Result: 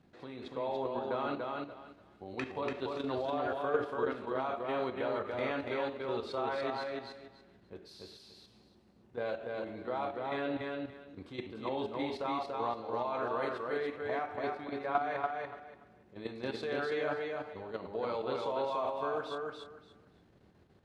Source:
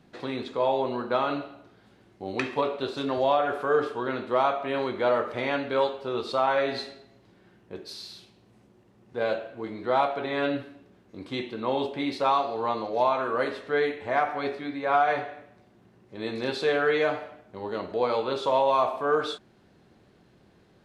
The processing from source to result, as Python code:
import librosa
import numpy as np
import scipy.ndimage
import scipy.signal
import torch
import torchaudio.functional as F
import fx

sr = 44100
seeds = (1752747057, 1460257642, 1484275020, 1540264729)

y = fx.high_shelf(x, sr, hz=2500.0, db=-4.0)
y = fx.level_steps(y, sr, step_db=10)
y = fx.peak_eq(y, sr, hz=81.0, db=6.5, octaves=0.55)
y = fx.echo_feedback(y, sr, ms=288, feedback_pct=21, wet_db=-3.0)
y = y * librosa.db_to_amplitude(-5.0)